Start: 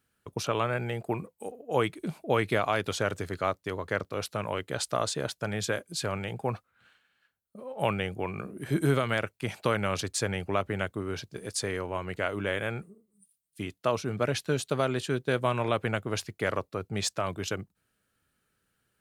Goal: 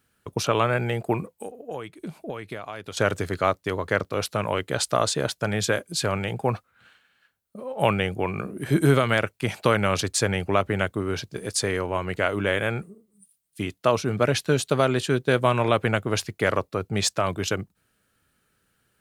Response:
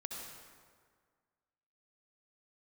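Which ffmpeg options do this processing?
-filter_complex "[0:a]asettb=1/sr,asplit=3[a][b][c];[a]atrim=end=1.304[d];[b]atrim=start=1.3:end=2.97,asetpts=PTS-STARTPTS,afade=t=in:d=0.004:c=qsin,afade=t=out:st=1.666:d=0.004:c=qsin,acompressor=threshold=-38dB:ratio=8[e];[c]atrim=start=2.966[f];[d][e]acrossfade=d=0.004:c1=hsin:c2=qsin[g];[g][f]acrossfade=d=0.004:c1=qsin:c2=hsin,volume=6.5dB"

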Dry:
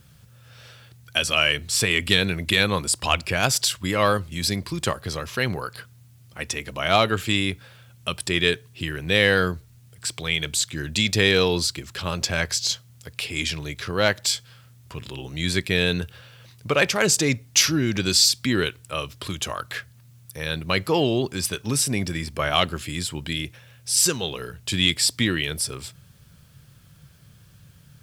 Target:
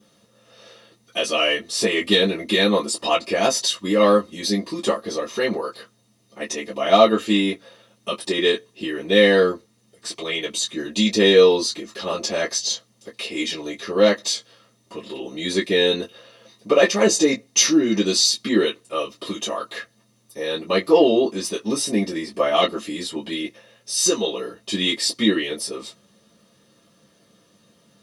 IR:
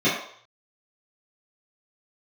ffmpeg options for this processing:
-filter_complex "[1:a]atrim=start_sample=2205,atrim=end_sample=3087,asetrate=74970,aresample=44100[a];[0:a][a]afir=irnorm=-1:irlink=0,volume=-11dB"

